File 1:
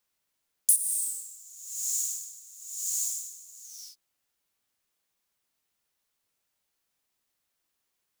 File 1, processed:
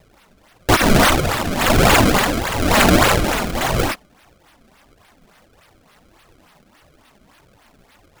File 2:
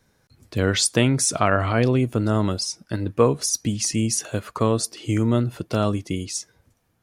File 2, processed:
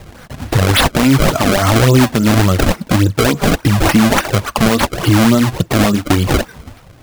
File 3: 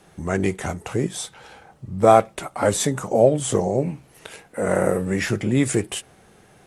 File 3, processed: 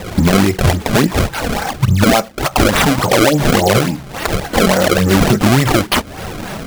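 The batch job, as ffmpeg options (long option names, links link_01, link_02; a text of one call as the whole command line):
ffmpeg -i in.wav -af "acrusher=samples=28:mix=1:aa=0.000001:lfo=1:lforange=44.8:lforate=3.5,equalizer=frequency=420:width_type=o:width=0.59:gain=-5.5,acompressor=threshold=-40dB:ratio=3,flanger=delay=1.5:depth=3.7:regen=-29:speed=1.6:shape=triangular,alimiter=level_in=33dB:limit=-1dB:release=50:level=0:latency=1,volume=-1dB" out.wav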